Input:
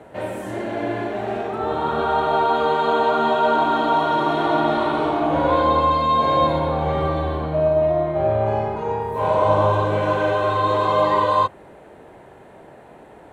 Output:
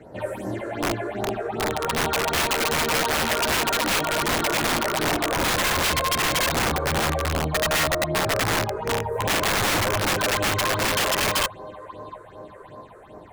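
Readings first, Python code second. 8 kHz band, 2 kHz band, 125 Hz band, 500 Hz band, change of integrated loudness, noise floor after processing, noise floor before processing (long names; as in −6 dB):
can't be measured, +6.0 dB, −3.0 dB, −7.0 dB, −2.5 dB, −45 dBFS, −45 dBFS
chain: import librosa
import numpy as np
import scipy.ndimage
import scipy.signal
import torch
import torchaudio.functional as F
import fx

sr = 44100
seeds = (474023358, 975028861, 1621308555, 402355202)

y = fx.echo_feedback(x, sr, ms=711, feedback_pct=58, wet_db=-20.5)
y = fx.phaser_stages(y, sr, stages=6, low_hz=200.0, high_hz=3100.0, hz=2.6, feedback_pct=40)
y = (np.mod(10.0 ** (17.0 / 20.0) * y + 1.0, 2.0) - 1.0) / 10.0 ** (17.0 / 20.0)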